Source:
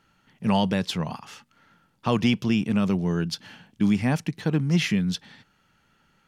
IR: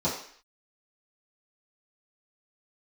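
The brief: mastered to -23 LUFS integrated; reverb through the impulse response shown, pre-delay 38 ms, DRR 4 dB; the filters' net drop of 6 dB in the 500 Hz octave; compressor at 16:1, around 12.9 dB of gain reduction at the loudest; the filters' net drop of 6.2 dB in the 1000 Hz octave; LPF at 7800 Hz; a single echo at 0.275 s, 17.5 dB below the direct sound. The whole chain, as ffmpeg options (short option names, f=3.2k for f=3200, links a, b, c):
-filter_complex "[0:a]lowpass=7.8k,equalizer=f=500:t=o:g=-6.5,equalizer=f=1k:t=o:g=-5.5,acompressor=threshold=-31dB:ratio=16,aecho=1:1:275:0.133,asplit=2[a][b];[1:a]atrim=start_sample=2205,adelay=38[c];[b][c]afir=irnorm=-1:irlink=0,volume=-14.5dB[d];[a][d]amix=inputs=2:normalize=0,volume=9dB"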